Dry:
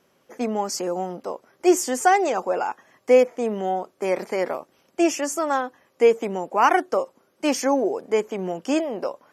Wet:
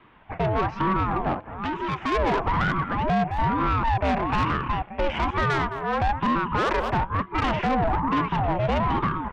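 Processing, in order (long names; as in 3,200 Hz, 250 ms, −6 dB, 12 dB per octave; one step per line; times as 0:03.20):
delay that plays each chunk backwards 442 ms, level −10 dB
in parallel at +2 dB: downward compressor 6 to 1, threshold −27 dBFS, peak gain reduction 15.5 dB
on the sum: single-sideband voice off tune −53 Hz 300–2,700 Hz
far-end echo of a speakerphone 210 ms, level −16 dB
brickwall limiter −13 dBFS, peak gain reduction 9.5 dB
soft clipping −23.5 dBFS, distortion −10 dB
0:01.34–0:02.12: low-shelf EQ 490 Hz −8.5 dB
ring modulator whose carrier an LFO sweeps 460 Hz, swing 45%, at 1.1 Hz
level +7 dB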